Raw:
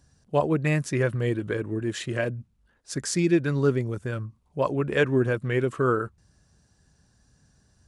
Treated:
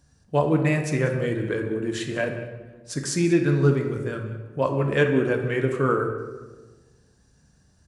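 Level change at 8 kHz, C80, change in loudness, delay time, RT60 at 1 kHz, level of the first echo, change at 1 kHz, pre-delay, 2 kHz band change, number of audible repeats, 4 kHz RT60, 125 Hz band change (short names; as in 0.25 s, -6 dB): +1.0 dB, 8.0 dB, +2.0 dB, 0.189 s, 1.2 s, -16.0 dB, +2.0 dB, 3 ms, +2.0 dB, 1, 0.85 s, +2.5 dB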